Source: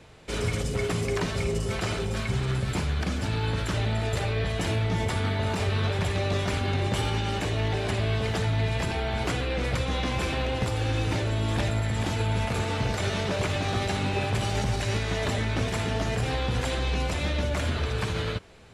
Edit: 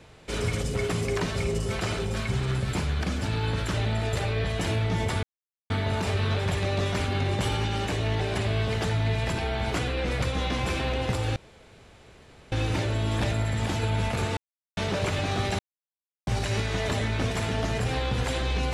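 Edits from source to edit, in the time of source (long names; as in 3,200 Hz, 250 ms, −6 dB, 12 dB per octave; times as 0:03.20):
0:05.23: splice in silence 0.47 s
0:10.89: splice in room tone 1.16 s
0:12.74–0:13.14: silence
0:13.96–0:14.64: silence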